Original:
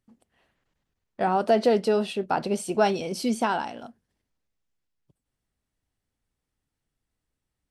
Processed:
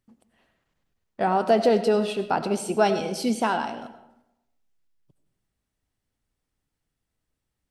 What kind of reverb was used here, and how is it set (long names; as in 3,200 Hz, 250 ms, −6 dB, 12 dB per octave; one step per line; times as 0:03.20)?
comb and all-pass reverb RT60 0.87 s, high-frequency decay 0.6×, pre-delay 50 ms, DRR 10.5 dB
level +1 dB